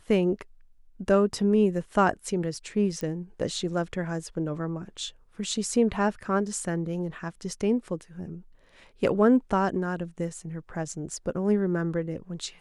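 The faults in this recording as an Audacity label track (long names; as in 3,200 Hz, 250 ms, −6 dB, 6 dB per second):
3.010000	3.010000	click −20 dBFS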